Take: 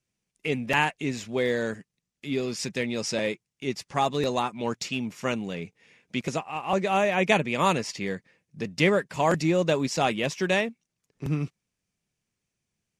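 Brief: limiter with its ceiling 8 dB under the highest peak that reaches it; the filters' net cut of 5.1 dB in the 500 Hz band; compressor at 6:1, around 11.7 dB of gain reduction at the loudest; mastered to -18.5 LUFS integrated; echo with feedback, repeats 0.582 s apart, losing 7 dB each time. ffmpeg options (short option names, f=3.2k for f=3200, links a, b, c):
-af "equalizer=f=500:t=o:g=-6.5,acompressor=threshold=-31dB:ratio=6,alimiter=level_in=2.5dB:limit=-24dB:level=0:latency=1,volume=-2.5dB,aecho=1:1:582|1164|1746|2328|2910:0.447|0.201|0.0905|0.0407|0.0183,volume=19dB"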